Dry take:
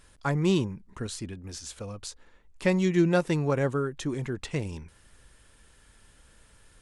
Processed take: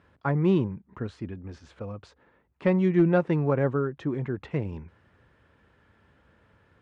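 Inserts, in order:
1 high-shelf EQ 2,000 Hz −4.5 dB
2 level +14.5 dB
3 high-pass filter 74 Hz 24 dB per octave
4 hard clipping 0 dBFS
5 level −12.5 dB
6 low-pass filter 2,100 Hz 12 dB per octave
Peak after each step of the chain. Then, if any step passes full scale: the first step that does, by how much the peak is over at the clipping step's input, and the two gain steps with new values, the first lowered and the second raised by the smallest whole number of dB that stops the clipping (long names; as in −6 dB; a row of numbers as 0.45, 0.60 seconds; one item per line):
−12.0, +2.5, +3.5, 0.0, −12.5, −12.0 dBFS
step 2, 3.5 dB
step 2 +10.5 dB, step 5 −8.5 dB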